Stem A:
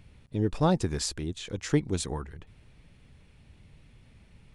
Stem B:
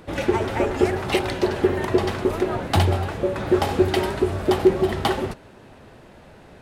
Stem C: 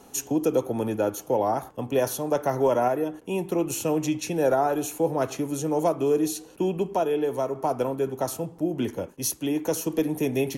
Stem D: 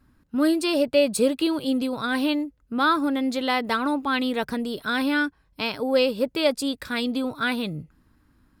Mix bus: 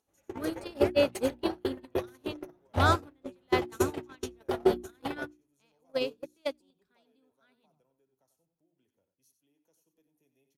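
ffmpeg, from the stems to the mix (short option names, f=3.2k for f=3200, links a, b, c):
-filter_complex "[0:a]adelay=1850,volume=-12dB,asplit=2[a][b];[b]volume=-6.5dB[c];[1:a]bass=f=250:g=-2,treble=f=4k:g=-7,volume=-6.5dB[d];[2:a]highshelf=f=2.4k:g=7.5,acompressor=mode=upward:threshold=-23dB:ratio=2.5,volume=-9dB,asplit=2[e][f];[f]volume=-10.5dB[g];[3:a]volume=-4.5dB,asplit=2[h][i];[i]volume=-17.5dB[j];[c][g][j]amix=inputs=3:normalize=0,aecho=0:1:92:1[k];[a][d][e][h][k]amix=inputs=5:normalize=0,agate=range=-40dB:threshold=-21dB:ratio=16:detection=peak,equalizer=f=68:t=o:w=0.77:g=3.5,bandreject=f=60:t=h:w=6,bandreject=f=120:t=h:w=6,bandreject=f=180:t=h:w=6,bandreject=f=240:t=h:w=6,bandreject=f=300:t=h:w=6,bandreject=f=360:t=h:w=6"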